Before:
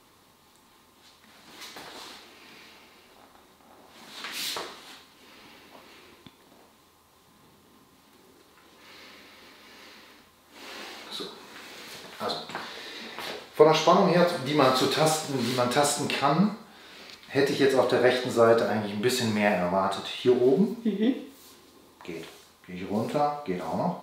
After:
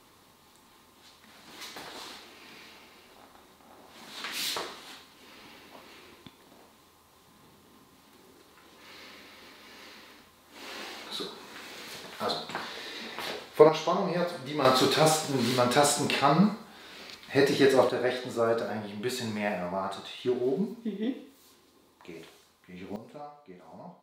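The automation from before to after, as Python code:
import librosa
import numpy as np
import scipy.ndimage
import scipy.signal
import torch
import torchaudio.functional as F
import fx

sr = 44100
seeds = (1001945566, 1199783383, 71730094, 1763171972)

y = fx.gain(x, sr, db=fx.steps((0.0, 0.0), (13.69, -8.0), (14.65, 0.5), (17.89, -7.0), (22.96, -18.5)))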